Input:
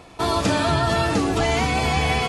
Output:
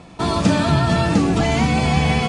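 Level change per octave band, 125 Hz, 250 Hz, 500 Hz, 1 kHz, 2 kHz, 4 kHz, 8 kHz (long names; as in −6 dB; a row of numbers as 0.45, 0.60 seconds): +6.5, +6.5, +0.5, +0.5, 0.0, 0.0, 0.0 decibels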